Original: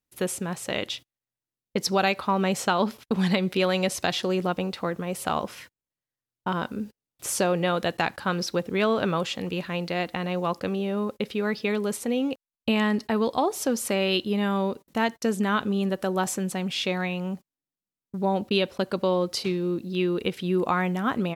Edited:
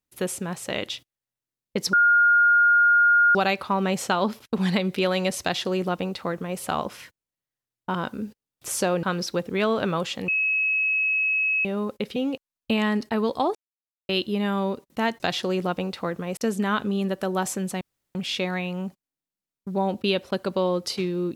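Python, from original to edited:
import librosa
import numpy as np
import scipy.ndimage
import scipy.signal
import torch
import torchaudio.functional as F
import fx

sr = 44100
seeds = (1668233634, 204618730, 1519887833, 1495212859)

y = fx.edit(x, sr, fx.insert_tone(at_s=1.93, length_s=1.42, hz=1420.0, db=-14.0),
    fx.duplicate(start_s=4.0, length_s=1.17, to_s=15.18),
    fx.cut(start_s=7.61, length_s=0.62),
    fx.bleep(start_s=9.48, length_s=1.37, hz=2570.0, db=-20.0),
    fx.cut(start_s=11.36, length_s=0.78),
    fx.silence(start_s=13.53, length_s=0.54),
    fx.insert_room_tone(at_s=16.62, length_s=0.34), tone=tone)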